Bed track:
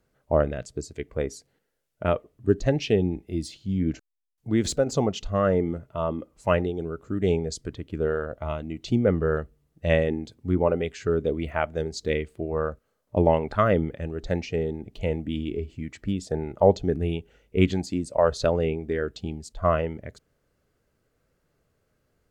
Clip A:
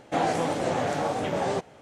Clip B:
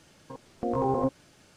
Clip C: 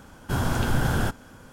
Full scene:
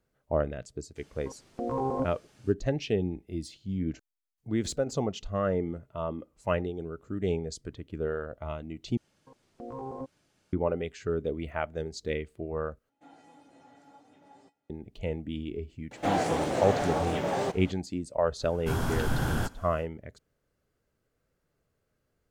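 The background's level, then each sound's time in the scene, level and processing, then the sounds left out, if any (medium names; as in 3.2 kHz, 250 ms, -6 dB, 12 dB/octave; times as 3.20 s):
bed track -6 dB
0.96 s: add B -3.5 dB
8.97 s: replace with B -12.5 dB
12.89 s: replace with A -17.5 dB + feedback comb 280 Hz, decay 0.16 s, harmonics odd, mix 90%
15.91 s: add A -3 dB + companding laws mixed up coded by mu
18.37 s: add C -5 dB, fades 0.10 s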